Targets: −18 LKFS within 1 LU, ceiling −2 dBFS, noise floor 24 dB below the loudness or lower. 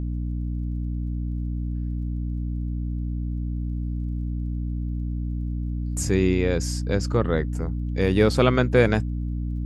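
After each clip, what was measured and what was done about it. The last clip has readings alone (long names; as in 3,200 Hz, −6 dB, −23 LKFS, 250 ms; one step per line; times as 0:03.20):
crackle rate 27 per second; mains hum 60 Hz; hum harmonics up to 300 Hz; level of the hum −25 dBFS; integrated loudness −25.5 LKFS; sample peak −5.0 dBFS; target loudness −18.0 LKFS
→ click removal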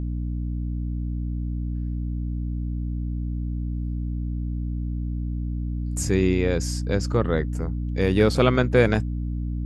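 crackle rate 0.10 per second; mains hum 60 Hz; hum harmonics up to 300 Hz; level of the hum −25 dBFS
→ mains-hum notches 60/120/180/240/300 Hz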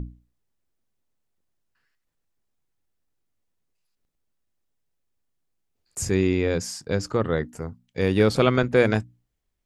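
mains hum none found; integrated loudness −23.0 LKFS; sample peak −4.5 dBFS; target loudness −18.0 LKFS
→ level +5 dB
brickwall limiter −2 dBFS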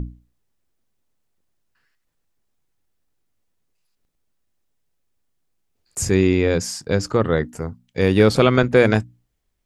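integrated loudness −18.5 LKFS; sample peak −2.0 dBFS; background noise floor −72 dBFS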